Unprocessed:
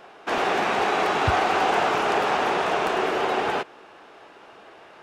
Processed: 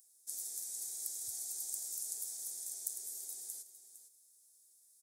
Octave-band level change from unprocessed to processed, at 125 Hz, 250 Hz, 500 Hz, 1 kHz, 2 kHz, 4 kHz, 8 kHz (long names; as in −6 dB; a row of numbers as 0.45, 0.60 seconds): below −40 dB, below −40 dB, below −40 dB, below −40 dB, below −40 dB, −21.5 dB, +5.0 dB